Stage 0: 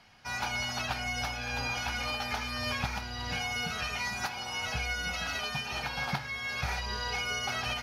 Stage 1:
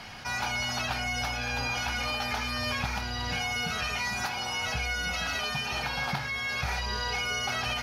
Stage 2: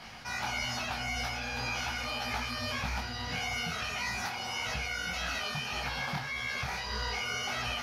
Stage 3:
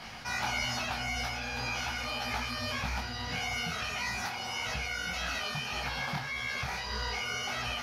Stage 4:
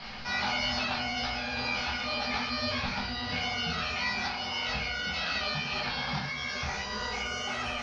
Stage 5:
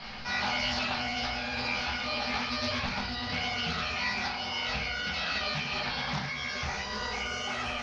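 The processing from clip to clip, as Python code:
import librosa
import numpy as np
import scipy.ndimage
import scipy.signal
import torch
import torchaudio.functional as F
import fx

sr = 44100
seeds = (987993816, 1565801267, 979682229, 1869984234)

y1 = fx.env_flatten(x, sr, amount_pct=50)
y2 = fx.detune_double(y1, sr, cents=59)
y3 = fx.rider(y2, sr, range_db=10, speed_s=2.0)
y4 = fx.filter_sweep_lowpass(y3, sr, from_hz=4600.0, to_hz=9300.0, start_s=5.97, end_s=7.76, q=2.9)
y4 = fx.air_absorb(y4, sr, metres=120.0)
y4 = fx.room_shoebox(y4, sr, seeds[0], volume_m3=140.0, walls='furnished', distance_m=1.2)
y5 = fx.doppler_dist(y4, sr, depth_ms=0.22)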